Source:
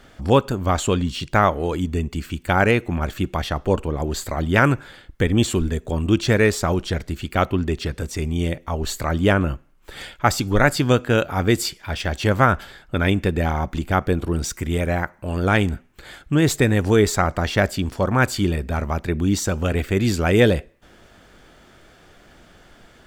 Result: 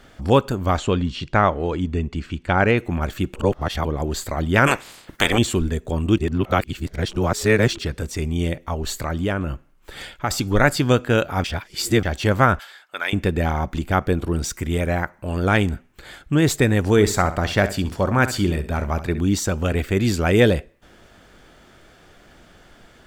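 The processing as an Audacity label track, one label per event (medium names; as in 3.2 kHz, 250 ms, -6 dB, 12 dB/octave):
0.780000	2.780000	distance through air 100 m
3.340000	3.850000	reverse
4.660000	5.370000	spectral peaks clipped ceiling under each frame's peak by 28 dB
6.180000	7.780000	reverse
8.730000	10.310000	compression 2:1, threshold -22 dBFS
11.440000	12.030000	reverse
12.590000	13.130000	high-pass 920 Hz
16.910000	19.200000	feedback delay 66 ms, feedback 28%, level -13 dB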